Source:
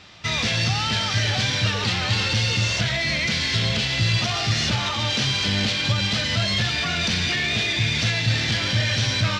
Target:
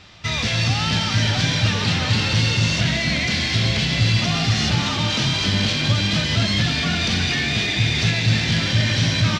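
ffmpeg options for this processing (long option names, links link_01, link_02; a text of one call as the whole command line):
ffmpeg -i in.wav -filter_complex "[0:a]lowshelf=frequency=95:gain=8.5,asplit=2[link_01][link_02];[link_02]asplit=6[link_03][link_04][link_05][link_06][link_07][link_08];[link_03]adelay=263,afreqshift=52,volume=-7dB[link_09];[link_04]adelay=526,afreqshift=104,volume=-12.5dB[link_10];[link_05]adelay=789,afreqshift=156,volume=-18dB[link_11];[link_06]adelay=1052,afreqshift=208,volume=-23.5dB[link_12];[link_07]adelay=1315,afreqshift=260,volume=-29.1dB[link_13];[link_08]adelay=1578,afreqshift=312,volume=-34.6dB[link_14];[link_09][link_10][link_11][link_12][link_13][link_14]amix=inputs=6:normalize=0[link_15];[link_01][link_15]amix=inputs=2:normalize=0" out.wav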